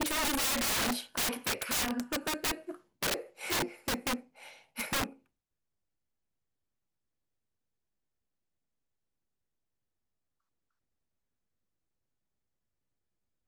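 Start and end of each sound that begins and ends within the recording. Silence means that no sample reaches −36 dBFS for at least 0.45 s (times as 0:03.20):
0:04.78–0:05.06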